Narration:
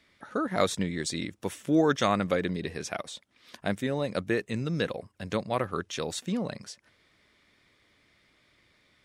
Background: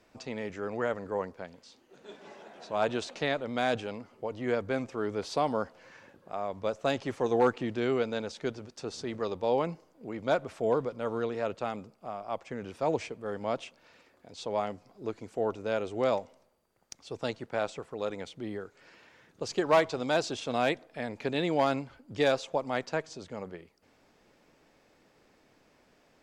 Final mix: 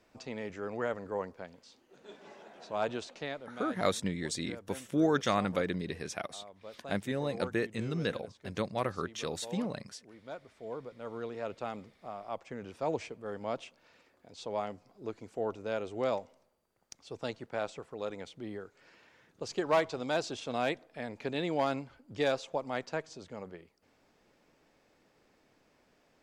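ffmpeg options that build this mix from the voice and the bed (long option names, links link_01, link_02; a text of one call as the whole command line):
ffmpeg -i stem1.wav -i stem2.wav -filter_complex "[0:a]adelay=3250,volume=-4dB[link_01];[1:a]volume=9.5dB,afade=type=out:start_time=2.67:duration=0.99:silence=0.211349,afade=type=in:start_time=10.58:duration=1.16:silence=0.237137[link_02];[link_01][link_02]amix=inputs=2:normalize=0" out.wav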